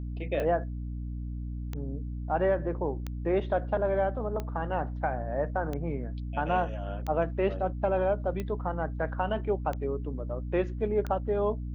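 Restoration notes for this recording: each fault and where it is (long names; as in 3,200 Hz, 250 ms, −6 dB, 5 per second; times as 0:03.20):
mains hum 60 Hz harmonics 5 −35 dBFS
scratch tick 45 rpm −21 dBFS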